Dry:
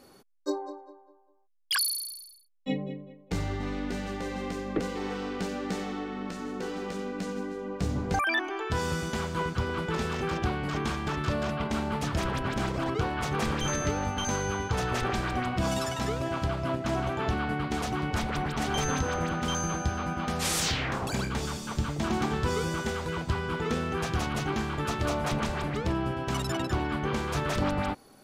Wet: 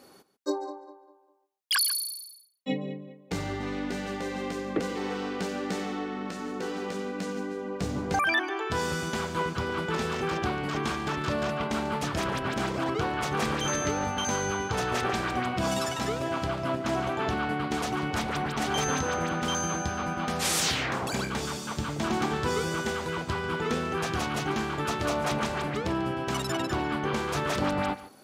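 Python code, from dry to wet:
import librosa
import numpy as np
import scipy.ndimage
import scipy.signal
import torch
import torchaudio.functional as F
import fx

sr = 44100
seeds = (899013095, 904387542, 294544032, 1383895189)

y = fx.highpass(x, sr, hz=180.0, slope=6)
y = y + 10.0 ** (-16.0 / 20.0) * np.pad(y, (int(143 * sr / 1000.0), 0))[:len(y)]
y = y * 10.0 ** (2.0 / 20.0)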